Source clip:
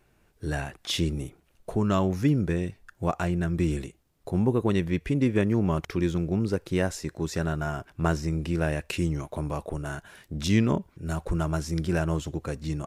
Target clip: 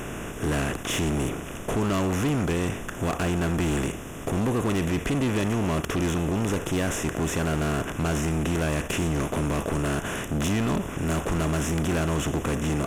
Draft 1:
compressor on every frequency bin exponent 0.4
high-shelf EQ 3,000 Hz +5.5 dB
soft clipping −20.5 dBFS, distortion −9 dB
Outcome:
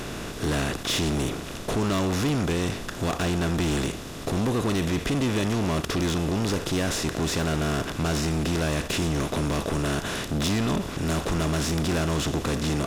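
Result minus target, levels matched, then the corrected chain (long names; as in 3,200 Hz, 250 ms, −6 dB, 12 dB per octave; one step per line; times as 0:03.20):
4,000 Hz band +5.0 dB
compressor on every frequency bin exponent 0.4
Butterworth band-reject 4,400 Hz, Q 1.5
high-shelf EQ 3,000 Hz +5.5 dB
soft clipping −20.5 dBFS, distortion −9 dB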